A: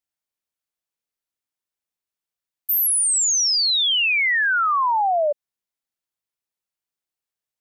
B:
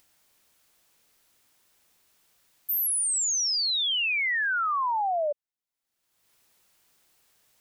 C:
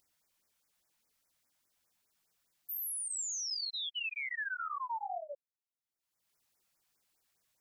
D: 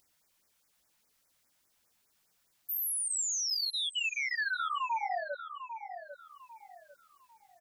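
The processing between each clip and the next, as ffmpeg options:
ffmpeg -i in.wav -af "acompressor=mode=upward:threshold=-35dB:ratio=2.5,volume=-7dB" out.wav
ffmpeg -i in.wav -af "flanger=delay=19.5:depth=5.2:speed=2.3,afftfilt=real='re*(1-between(b*sr/1024,320*pow(3600/320,0.5+0.5*sin(2*PI*4.9*pts/sr))/1.41,320*pow(3600/320,0.5+0.5*sin(2*PI*4.9*pts/sr))*1.41))':imag='im*(1-between(b*sr/1024,320*pow(3600/320,0.5+0.5*sin(2*PI*4.9*pts/sr))/1.41,320*pow(3600/320,0.5+0.5*sin(2*PI*4.9*pts/sr))*1.41))':win_size=1024:overlap=0.75,volume=-8.5dB" out.wav
ffmpeg -i in.wav -filter_complex "[0:a]asplit=2[link_01][link_02];[link_02]adelay=798,lowpass=frequency=2600:poles=1,volume=-9dB,asplit=2[link_03][link_04];[link_04]adelay=798,lowpass=frequency=2600:poles=1,volume=0.34,asplit=2[link_05][link_06];[link_06]adelay=798,lowpass=frequency=2600:poles=1,volume=0.34,asplit=2[link_07][link_08];[link_08]adelay=798,lowpass=frequency=2600:poles=1,volume=0.34[link_09];[link_01][link_03][link_05][link_07][link_09]amix=inputs=5:normalize=0,volume=5dB" out.wav

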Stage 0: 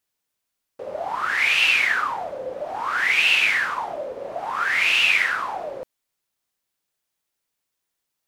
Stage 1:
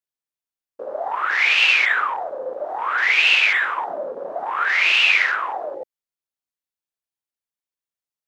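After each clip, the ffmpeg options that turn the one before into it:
ffmpeg -i in.wav -af "afwtdn=0.0224,volume=2.5dB" out.wav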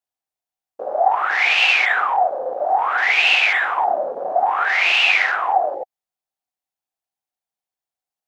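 ffmpeg -i in.wav -af "equalizer=frequency=750:width=3.5:gain=14.5" out.wav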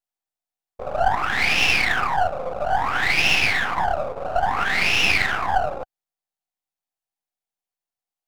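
ffmpeg -i in.wav -af "aeval=exprs='if(lt(val(0),0),0.251*val(0),val(0))':channel_layout=same" out.wav

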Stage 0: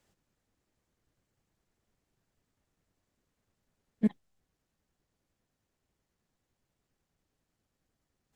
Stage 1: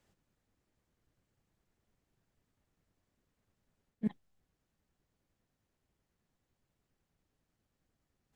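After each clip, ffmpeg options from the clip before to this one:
ffmpeg -i in.wav -af "bass=frequency=250:gain=2,treble=frequency=4000:gain=-3,areverse,acompressor=threshold=-29dB:ratio=6,areverse,volume=-1dB" out.wav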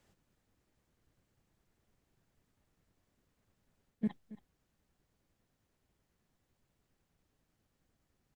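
ffmpeg -i in.wav -af "alimiter=level_in=4dB:limit=-24dB:level=0:latency=1:release=32,volume=-4dB,aecho=1:1:276:0.141,volume=3dB" out.wav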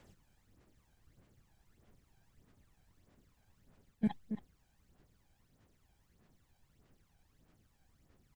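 ffmpeg -i in.wav -af "aphaser=in_gain=1:out_gain=1:delay=1.3:decay=0.58:speed=1.6:type=sinusoidal,volume=3.5dB" out.wav

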